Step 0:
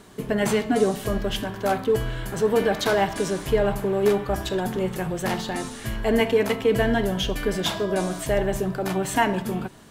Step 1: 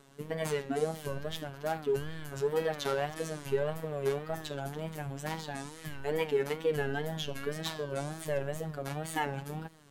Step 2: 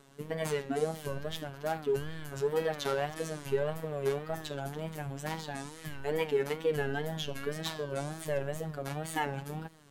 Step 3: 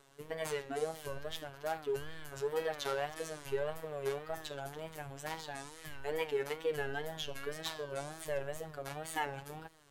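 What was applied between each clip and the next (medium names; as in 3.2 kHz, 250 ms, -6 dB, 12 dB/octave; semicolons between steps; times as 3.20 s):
robot voice 149 Hz; wow and flutter 140 cents; trim -8.5 dB
no audible change
peaking EQ 200 Hz -14.5 dB 1 oct; trim -2.5 dB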